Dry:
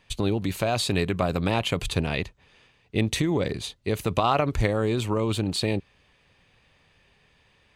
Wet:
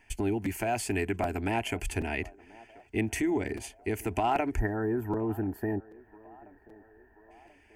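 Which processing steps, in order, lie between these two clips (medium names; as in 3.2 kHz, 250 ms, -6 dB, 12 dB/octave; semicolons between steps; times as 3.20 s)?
4.59–7.31 s: time-frequency box 1.9–11 kHz -24 dB; in parallel at -1 dB: compression, threshold -38 dBFS, peak gain reduction 19 dB; 0.42–1.03 s: on the sum: added noise pink -62 dBFS; static phaser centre 780 Hz, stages 8; band-passed feedback delay 1034 ms, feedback 60%, band-pass 650 Hz, level -20.5 dB; crackling interface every 0.78 s, samples 256, repeat, from 0.45 s; trim -2.5 dB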